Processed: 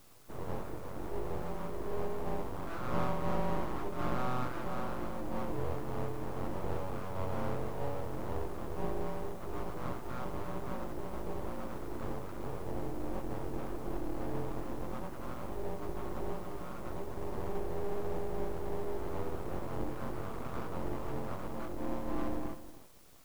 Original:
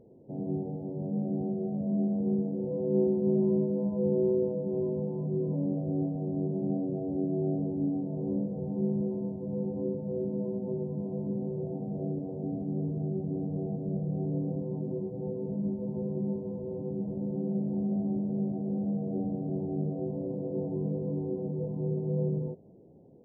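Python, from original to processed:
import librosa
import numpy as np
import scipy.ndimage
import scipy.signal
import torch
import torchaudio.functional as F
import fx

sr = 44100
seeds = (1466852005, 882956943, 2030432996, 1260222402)

p1 = fx.lower_of_two(x, sr, delay_ms=0.63)
p2 = fx.quant_dither(p1, sr, seeds[0], bits=8, dither='triangular')
p3 = p1 + F.gain(torch.from_numpy(p2), -9.5).numpy()
p4 = p3 + 10.0 ** (-14.5 / 20.0) * np.pad(p3, (int(315 * sr / 1000.0), 0))[:len(p3)]
p5 = np.abs(p4)
y = F.gain(torch.from_numpy(p5), -4.5).numpy()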